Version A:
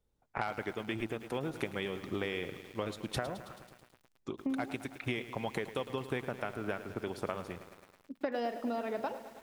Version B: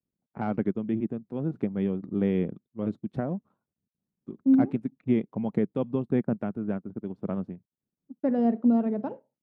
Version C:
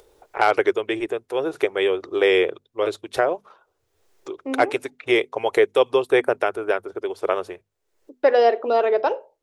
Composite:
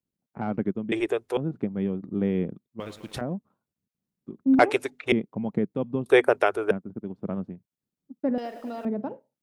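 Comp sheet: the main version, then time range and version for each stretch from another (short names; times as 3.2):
B
0.92–1.37 from C
2.8–3.21 from A
4.59–5.12 from C
6.06–6.71 from C
8.38–8.85 from A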